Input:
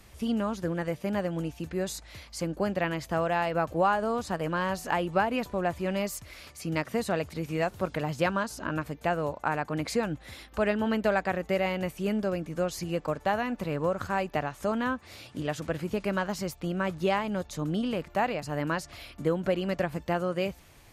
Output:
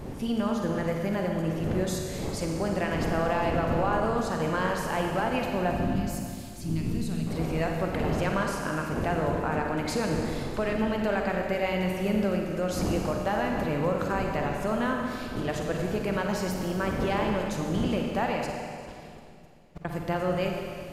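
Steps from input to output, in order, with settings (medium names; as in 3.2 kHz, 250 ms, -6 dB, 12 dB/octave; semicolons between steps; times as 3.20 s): wind noise 360 Hz -36 dBFS; peak limiter -19 dBFS, peak gain reduction 7 dB; added noise brown -54 dBFS; 5.71–7.27 s: FFT filter 270 Hz 0 dB, 530 Hz -19 dB, 2 kHz -15 dB, 3.5 kHz -4 dB; 18.50–19.85 s: compressor with a negative ratio -50 dBFS, ratio -0.5; Schroeder reverb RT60 2.3 s, DRR 1 dB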